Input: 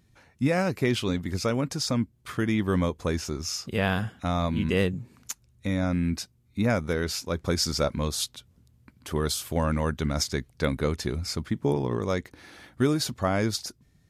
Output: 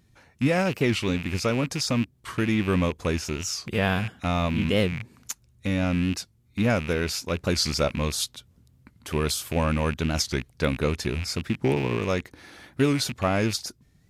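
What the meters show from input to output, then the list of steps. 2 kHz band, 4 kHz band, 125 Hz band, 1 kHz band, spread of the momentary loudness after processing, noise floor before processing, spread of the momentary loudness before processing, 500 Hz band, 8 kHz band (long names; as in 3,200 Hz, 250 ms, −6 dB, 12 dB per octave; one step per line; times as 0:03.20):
+3.5 dB, +2.0 dB, +1.5 dB, +1.5 dB, 8 LU, −63 dBFS, 8 LU, +1.5 dB, +1.5 dB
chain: loose part that buzzes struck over −34 dBFS, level −25 dBFS
wow of a warped record 45 rpm, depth 160 cents
level +1.5 dB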